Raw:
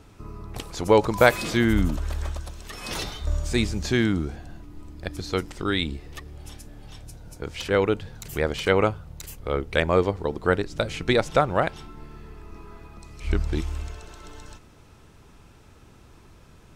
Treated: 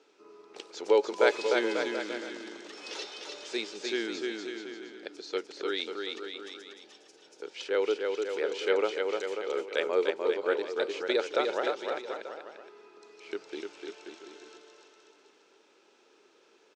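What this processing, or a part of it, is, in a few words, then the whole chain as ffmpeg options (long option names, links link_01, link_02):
phone speaker on a table: -af "highpass=frequency=360:width=0.5412,highpass=frequency=360:width=1.3066,equalizer=frequency=410:width_type=q:width=4:gain=5,equalizer=frequency=690:width_type=q:width=4:gain=-7,equalizer=frequency=1100:width_type=q:width=4:gain=-8,equalizer=frequency=1900:width_type=q:width=4:gain=-4,lowpass=frequency=6500:width=0.5412,lowpass=frequency=6500:width=1.3066,equalizer=frequency=130:width=0.81:gain=-2.5,aecho=1:1:300|540|732|885.6|1008:0.631|0.398|0.251|0.158|0.1,volume=-6dB"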